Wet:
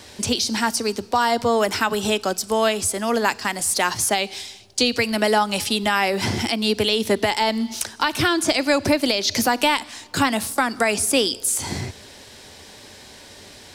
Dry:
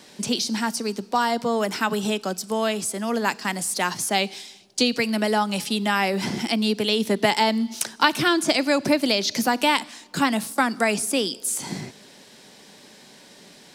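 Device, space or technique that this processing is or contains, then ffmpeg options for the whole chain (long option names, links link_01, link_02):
car stereo with a boomy subwoofer: -af "lowshelf=frequency=120:width_type=q:width=3:gain=11.5,alimiter=limit=-13.5dB:level=0:latency=1:release=233,volume=5.5dB"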